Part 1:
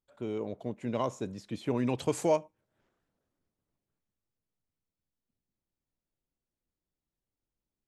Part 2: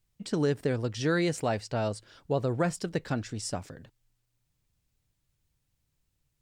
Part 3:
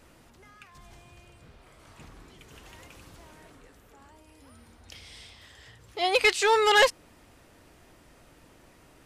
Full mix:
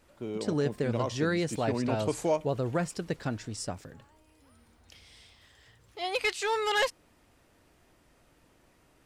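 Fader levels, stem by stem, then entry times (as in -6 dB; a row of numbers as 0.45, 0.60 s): -1.0, -2.0, -7.5 dB; 0.00, 0.15, 0.00 s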